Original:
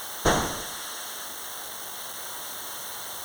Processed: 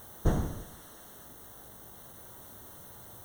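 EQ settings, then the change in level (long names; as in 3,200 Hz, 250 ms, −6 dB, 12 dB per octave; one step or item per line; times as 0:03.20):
drawn EQ curve 100 Hz 0 dB, 1,100 Hz −21 dB, 4,600 Hz −28 dB, 16,000 Hz −15 dB
+4.5 dB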